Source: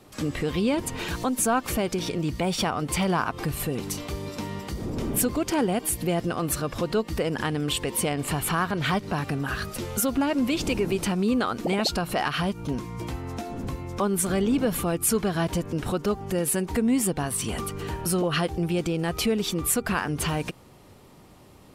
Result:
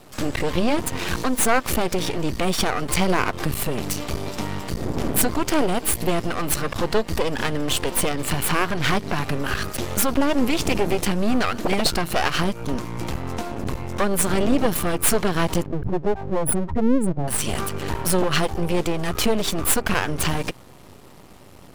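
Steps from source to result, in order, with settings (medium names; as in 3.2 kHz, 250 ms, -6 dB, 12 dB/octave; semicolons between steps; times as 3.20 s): 15.66–17.28 s: spectral contrast enhancement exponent 3.3; half-wave rectifier; trim +9 dB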